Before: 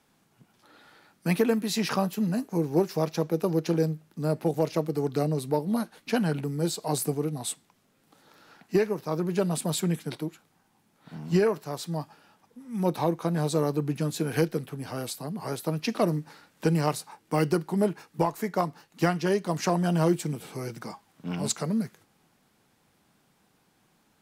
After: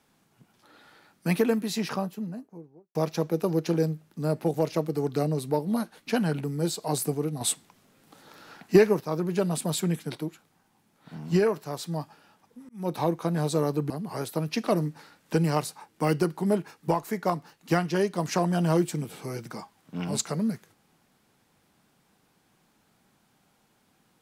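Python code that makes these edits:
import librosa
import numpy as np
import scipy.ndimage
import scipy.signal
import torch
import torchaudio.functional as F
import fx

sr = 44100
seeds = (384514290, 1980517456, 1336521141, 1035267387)

y = fx.studio_fade_out(x, sr, start_s=1.41, length_s=1.54)
y = fx.edit(y, sr, fx.clip_gain(start_s=7.41, length_s=1.59, db=6.0),
    fx.fade_in_span(start_s=12.69, length_s=0.3),
    fx.cut(start_s=13.9, length_s=1.31), tone=tone)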